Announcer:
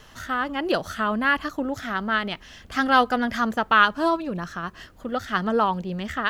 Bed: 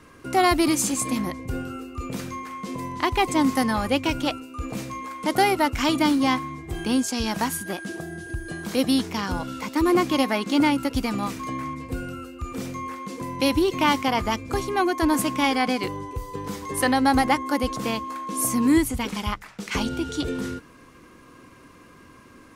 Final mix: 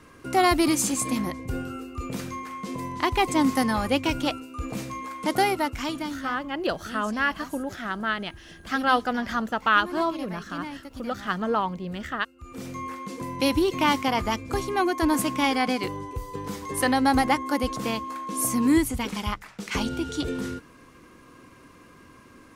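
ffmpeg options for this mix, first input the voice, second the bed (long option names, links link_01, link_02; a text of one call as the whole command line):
ffmpeg -i stem1.wav -i stem2.wav -filter_complex "[0:a]adelay=5950,volume=-3.5dB[link_01];[1:a]volume=14dB,afade=type=out:start_time=5.23:duration=0.98:silence=0.16788,afade=type=in:start_time=12.36:duration=0.45:silence=0.177828[link_02];[link_01][link_02]amix=inputs=2:normalize=0" out.wav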